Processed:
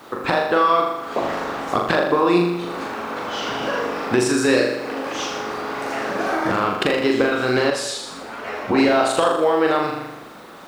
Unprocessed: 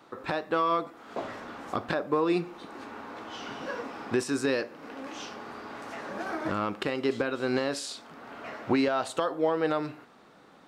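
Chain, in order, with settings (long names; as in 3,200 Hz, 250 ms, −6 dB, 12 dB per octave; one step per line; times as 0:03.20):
mains-hum notches 50/100/150/200/250/300 Hz
flutter between parallel walls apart 6.9 metres, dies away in 0.83 s
in parallel at −1.5 dB: downward compressor, threshold −36 dBFS, peak gain reduction 16.5 dB
on the sum: bit reduction 10 bits
harmonic and percussive parts rebalanced percussive +5 dB
0:07.70–0:08.78: string-ensemble chorus
level +4.5 dB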